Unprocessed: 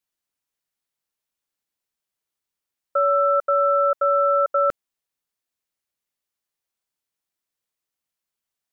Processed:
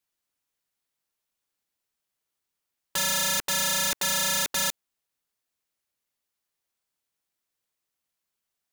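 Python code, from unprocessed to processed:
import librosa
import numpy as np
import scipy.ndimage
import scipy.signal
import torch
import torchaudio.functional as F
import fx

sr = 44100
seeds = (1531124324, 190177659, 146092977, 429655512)

y = (np.mod(10.0 ** (22.0 / 20.0) * x + 1.0, 2.0) - 1.0) / 10.0 ** (22.0 / 20.0)
y = y * librosa.db_to_amplitude(1.5)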